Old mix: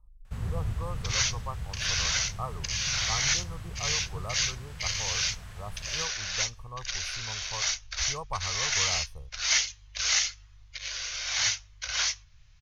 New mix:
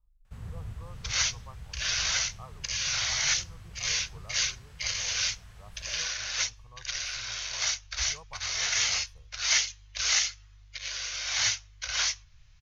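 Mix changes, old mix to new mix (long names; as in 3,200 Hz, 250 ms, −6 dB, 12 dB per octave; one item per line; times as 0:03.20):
speech −12.0 dB
first sound −8.0 dB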